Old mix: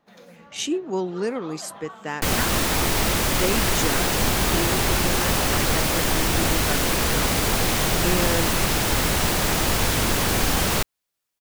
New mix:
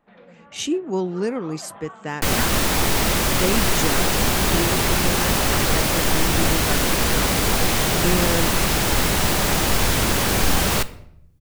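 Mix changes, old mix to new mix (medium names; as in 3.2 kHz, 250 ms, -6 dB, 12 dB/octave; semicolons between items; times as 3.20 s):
speech: add bass shelf 170 Hz +10.5 dB; first sound: add low-pass 2.9 kHz 24 dB/octave; second sound: send on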